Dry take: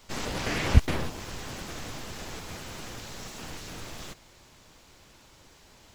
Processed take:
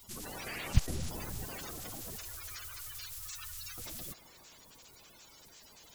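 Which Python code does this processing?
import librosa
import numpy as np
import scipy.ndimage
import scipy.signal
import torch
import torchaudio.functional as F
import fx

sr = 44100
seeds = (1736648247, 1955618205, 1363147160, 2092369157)

p1 = fx.spec_quant(x, sr, step_db=30)
p2 = F.preemphasis(torch.from_numpy(p1), 0.8).numpy()
p3 = fx.over_compress(p2, sr, threshold_db=-50.0, ratio=-0.5)
p4 = p2 + (p3 * librosa.db_to_amplitude(-0.5))
p5 = fx.low_shelf(p4, sr, hz=170.0, db=10.0, at=(0.76, 1.45))
p6 = fx.ellip_bandstop(p5, sr, low_hz=100.0, high_hz=1200.0, order=3, stop_db=40, at=(2.16, 3.78))
p7 = p6 + fx.echo_wet_bandpass(p6, sr, ms=131, feedback_pct=83, hz=790.0, wet_db=-14, dry=0)
y = p7 * librosa.db_to_amplitude(-1.0)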